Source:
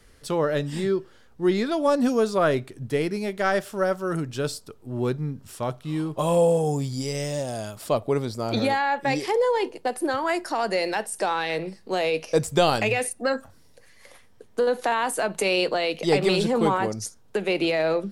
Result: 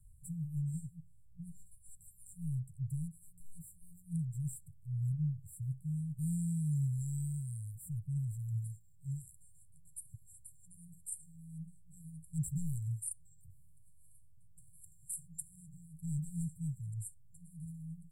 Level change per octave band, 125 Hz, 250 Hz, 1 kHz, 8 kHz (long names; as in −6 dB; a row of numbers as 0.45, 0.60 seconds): −4.5 dB, −15.5 dB, below −40 dB, −10.0 dB